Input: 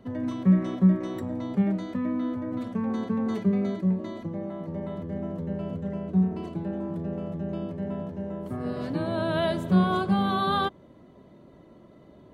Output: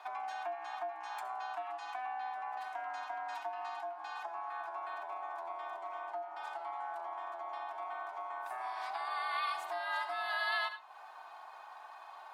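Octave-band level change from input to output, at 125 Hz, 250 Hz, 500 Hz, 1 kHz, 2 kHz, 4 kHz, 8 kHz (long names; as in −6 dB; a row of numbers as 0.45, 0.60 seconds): below −40 dB, below −40 dB, −13.0 dB, −2.5 dB, 0.0 dB, −6.0 dB, can't be measured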